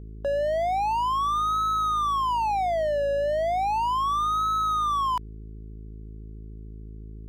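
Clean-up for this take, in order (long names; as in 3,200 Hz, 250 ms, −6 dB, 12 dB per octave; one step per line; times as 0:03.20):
hum removal 53.7 Hz, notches 8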